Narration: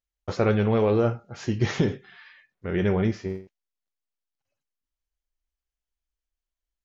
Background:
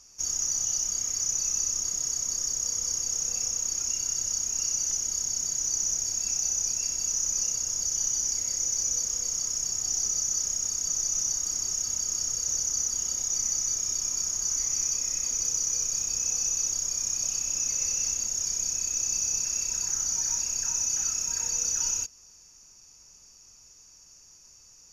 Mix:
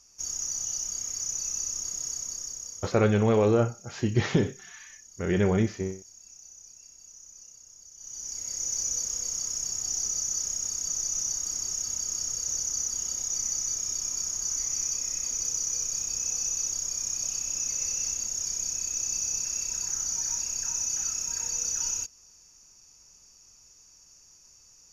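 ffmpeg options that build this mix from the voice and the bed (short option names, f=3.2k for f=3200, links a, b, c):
-filter_complex "[0:a]adelay=2550,volume=-0.5dB[a];[1:a]volume=15.5dB,afade=t=out:st=2.11:d=0.92:silence=0.133352,afade=t=in:st=7.97:d=0.78:silence=0.105925[b];[a][b]amix=inputs=2:normalize=0"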